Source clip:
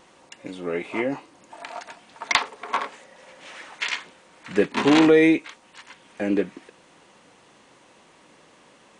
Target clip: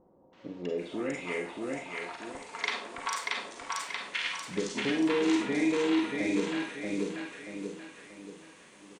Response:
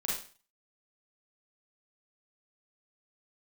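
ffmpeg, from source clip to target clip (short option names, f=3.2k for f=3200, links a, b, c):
-filter_complex "[0:a]asplit=2[a][b];[b]aecho=0:1:632|1264|1896|2528|3160:0.631|0.246|0.096|0.0374|0.0146[c];[a][c]amix=inputs=2:normalize=0,acompressor=threshold=-23dB:ratio=6,asettb=1/sr,asplit=3[d][e][f];[d]atrim=end=4.954[g];[e]atrim=start=4.95:end=6.4,asetpts=PTS-STARTPTS,afade=t=in:d=0.004:c=qsin,afade=t=out:st=1.446:d=0.004:c=qsin,asplit=2[h][i];[i]adelay=47,volume=-4dB[j];[h][j]amix=inputs=2:normalize=0,atrim=end_sample=63945[k];[f]atrim=start=6.396[l];[g][k]acrossfade=d=0.004:c1=hsin:c2=qsin[m];[m][l]acrossfade=d=0.004:c1=qsin:c2=hsin,acrossover=split=750|4700[n][o][p];[o]adelay=330[q];[p]adelay=780[r];[n][q][r]amix=inputs=3:normalize=0,asplit=2[s][t];[1:a]atrim=start_sample=2205,highshelf=f=3.3k:g=11.5[u];[t][u]afir=irnorm=-1:irlink=0,volume=-7dB[v];[s][v]amix=inputs=2:normalize=0,volume=-7.5dB"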